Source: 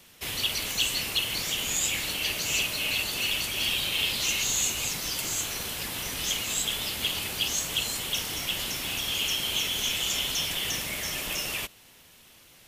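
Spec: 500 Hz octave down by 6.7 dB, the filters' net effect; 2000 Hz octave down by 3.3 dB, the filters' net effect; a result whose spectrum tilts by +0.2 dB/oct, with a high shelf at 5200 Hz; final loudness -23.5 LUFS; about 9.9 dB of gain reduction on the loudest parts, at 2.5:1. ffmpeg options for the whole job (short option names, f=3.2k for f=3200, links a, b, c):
-af "equalizer=f=500:t=o:g=-8.5,equalizer=f=2k:t=o:g=-6.5,highshelf=f=5.2k:g=7.5,acompressor=threshold=-35dB:ratio=2.5,volume=8.5dB"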